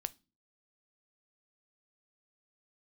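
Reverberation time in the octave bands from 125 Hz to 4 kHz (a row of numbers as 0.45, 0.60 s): 0.50, 0.45, 0.35, 0.30, 0.25, 0.30 s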